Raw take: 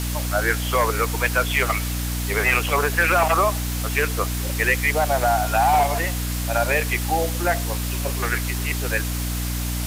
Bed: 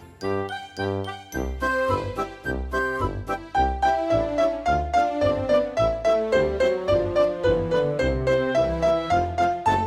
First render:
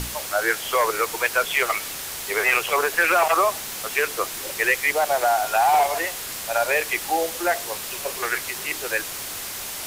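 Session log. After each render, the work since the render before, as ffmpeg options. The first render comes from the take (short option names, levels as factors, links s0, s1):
-af "bandreject=f=60:t=h:w=6,bandreject=f=120:t=h:w=6,bandreject=f=180:t=h:w=6,bandreject=f=240:t=h:w=6,bandreject=f=300:t=h:w=6"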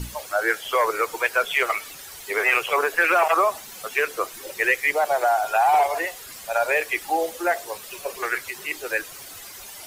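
-af "afftdn=nr=12:nf=-33"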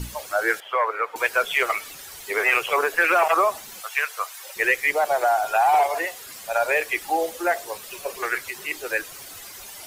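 -filter_complex "[0:a]asettb=1/sr,asplit=3[s0][s1][s2];[s0]atrim=end=0.604[s3];[s1]atrim=start=0.6:end=1.16,asetpts=PTS-STARTPTS,afade=t=in:d=0.004:c=qsin,afade=t=out:st=0.556:d=0.004:c=qsin,acrossover=split=460 2700:gain=0.0891 1 0.0708[s4][s5][s6];[s4][s5][s6]amix=inputs=3:normalize=0[s7];[s2]atrim=start=1.156[s8];[s3][s7]acrossfade=d=0.004:c1=hsin:c2=qsin[s9];[s9][s8]acrossfade=d=0.004:c1=qsin:c2=hsin,asplit=3[s10][s11][s12];[s10]afade=t=out:st=3.8:d=0.02[s13];[s11]highpass=f=720:w=0.5412,highpass=f=720:w=1.3066,afade=t=in:st=3.8:d=0.02,afade=t=out:st=4.55:d=0.02[s14];[s12]afade=t=in:st=4.55:d=0.02[s15];[s13][s14][s15]amix=inputs=3:normalize=0,asettb=1/sr,asplit=3[s16][s17][s18];[s16]atrim=end=5.694[s19];[s17]atrim=start=5.69:end=6.46,asetpts=PTS-STARTPTS,afade=t=in:d=0.004:c=qsin,afade=t=out:st=0.766:d=0.004:c=qsin,highpass=f=110:p=1[s20];[s18]atrim=start=6.456[s21];[s19][s20]acrossfade=d=0.004:c1=hsin:c2=qsin[s22];[s22][s21]acrossfade=d=0.004:c1=qsin:c2=hsin"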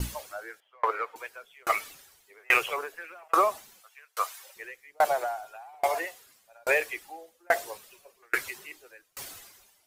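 -filter_complex "[0:a]asplit=2[s0][s1];[s1]asoftclip=type=tanh:threshold=0.0562,volume=0.316[s2];[s0][s2]amix=inputs=2:normalize=0,aeval=exprs='val(0)*pow(10,-38*if(lt(mod(1.2*n/s,1),2*abs(1.2)/1000),1-mod(1.2*n/s,1)/(2*abs(1.2)/1000),(mod(1.2*n/s,1)-2*abs(1.2)/1000)/(1-2*abs(1.2)/1000))/20)':c=same"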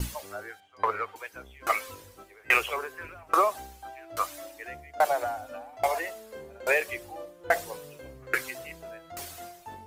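-filter_complex "[1:a]volume=0.0708[s0];[0:a][s0]amix=inputs=2:normalize=0"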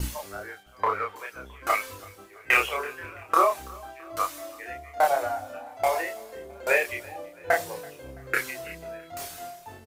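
-filter_complex "[0:a]asplit=2[s0][s1];[s1]adelay=30,volume=0.794[s2];[s0][s2]amix=inputs=2:normalize=0,aecho=1:1:332|664|996:0.0668|0.0354|0.0188"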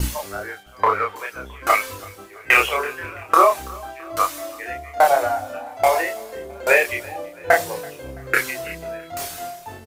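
-af "volume=2.37,alimiter=limit=0.708:level=0:latency=1"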